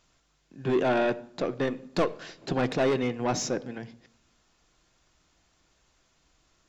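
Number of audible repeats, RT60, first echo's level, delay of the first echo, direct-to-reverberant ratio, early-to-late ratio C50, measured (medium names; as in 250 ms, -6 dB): no echo, 0.70 s, no echo, no echo, 11.0 dB, 19.0 dB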